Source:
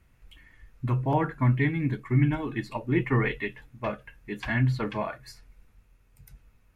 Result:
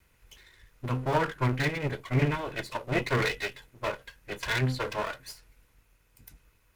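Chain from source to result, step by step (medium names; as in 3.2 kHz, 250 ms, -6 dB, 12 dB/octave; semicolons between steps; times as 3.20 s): comb filter that takes the minimum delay 2 ms; tilt EQ +1.5 dB/octave; trim +1.5 dB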